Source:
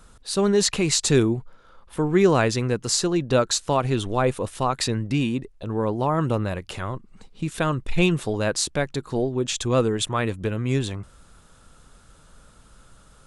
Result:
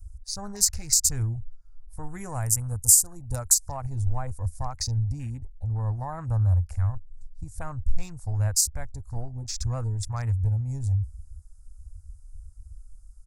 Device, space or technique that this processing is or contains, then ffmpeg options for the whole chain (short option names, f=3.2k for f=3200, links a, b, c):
car stereo with a boomy subwoofer: -filter_complex "[0:a]bandreject=f=380:w=12,asplit=3[a][b][c];[a]afade=t=out:st=2.02:d=0.02[d];[b]highshelf=f=6.9k:t=q:w=1.5:g=11.5,afade=t=in:st=2.02:d=0.02,afade=t=out:st=3.53:d=0.02[e];[c]afade=t=in:st=3.53:d=0.02[f];[d][e][f]amix=inputs=3:normalize=0,afwtdn=0.0224,lowshelf=f=110:t=q:w=3:g=10,alimiter=limit=-11.5dB:level=0:latency=1:release=402,firequalizer=gain_entry='entry(110,0);entry(180,-11);entry(370,-24);entry(780,-7);entry(1100,-13);entry(2100,-13);entry(3100,-27);entry(4900,2);entry(7100,7);entry(11000,10)':delay=0.05:min_phase=1"